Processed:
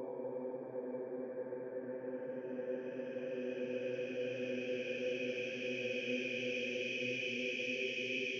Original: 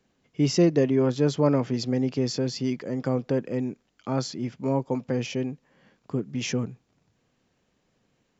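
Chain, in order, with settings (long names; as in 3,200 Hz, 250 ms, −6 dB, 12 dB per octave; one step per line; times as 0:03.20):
spectral envelope exaggerated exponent 2
band-pass filter sweep 4,000 Hz → 470 Hz, 0:03.54–0:07.52
extreme stretch with random phases 22×, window 0.50 s, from 0:04.92
level +7 dB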